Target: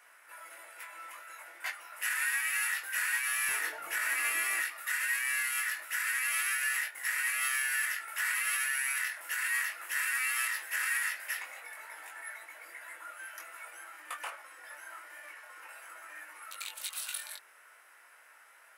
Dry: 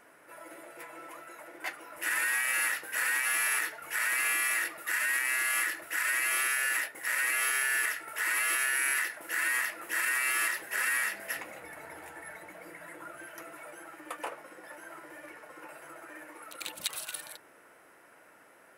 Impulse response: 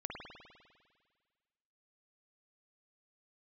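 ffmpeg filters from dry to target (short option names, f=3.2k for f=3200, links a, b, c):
-af "asetnsamples=n=441:p=0,asendcmd='3.49 highpass f 270;4.6 highpass f 1200',highpass=1.2k,alimiter=level_in=0.5dB:limit=-24dB:level=0:latency=1:release=135,volume=-0.5dB,flanger=delay=19.5:depth=2.3:speed=0.49,volume=5.5dB"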